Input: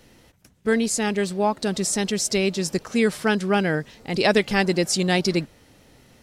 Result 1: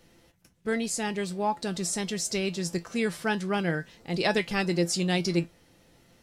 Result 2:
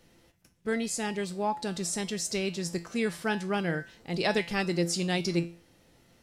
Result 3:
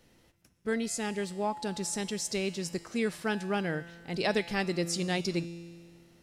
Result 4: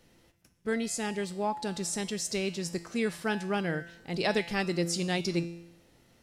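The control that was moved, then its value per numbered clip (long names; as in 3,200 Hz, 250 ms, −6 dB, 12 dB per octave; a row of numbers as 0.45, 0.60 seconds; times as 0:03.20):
tuned comb filter, decay: 0.16, 0.37, 1.8, 0.78 seconds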